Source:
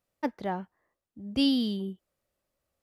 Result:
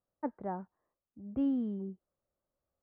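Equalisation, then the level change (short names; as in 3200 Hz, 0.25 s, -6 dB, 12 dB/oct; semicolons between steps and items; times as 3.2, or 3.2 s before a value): LPF 1400 Hz 24 dB/oct; -5.5 dB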